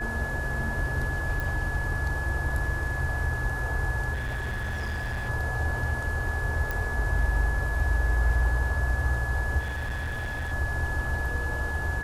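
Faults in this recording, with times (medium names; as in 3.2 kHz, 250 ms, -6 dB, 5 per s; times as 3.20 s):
whine 1.7 kHz -32 dBFS
1.40 s: pop
4.13–5.30 s: clipped -27.5 dBFS
6.71 s: pop -16 dBFS
9.59–10.53 s: clipped -28 dBFS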